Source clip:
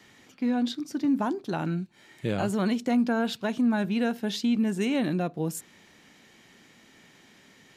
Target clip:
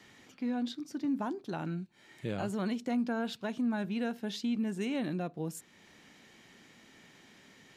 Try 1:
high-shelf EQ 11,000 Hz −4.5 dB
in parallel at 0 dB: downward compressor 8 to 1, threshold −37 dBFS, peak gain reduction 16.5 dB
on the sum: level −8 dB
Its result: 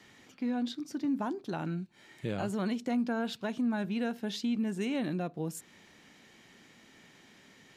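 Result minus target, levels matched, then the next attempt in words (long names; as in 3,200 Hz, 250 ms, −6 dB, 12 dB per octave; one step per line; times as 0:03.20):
downward compressor: peak gain reduction −10 dB
high-shelf EQ 11,000 Hz −4.5 dB
in parallel at 0 dB: downward compressor 8 to 1, threshold −48.5 dBFS, peak gain reduction 26.5 dB
on the sum: level −8 dB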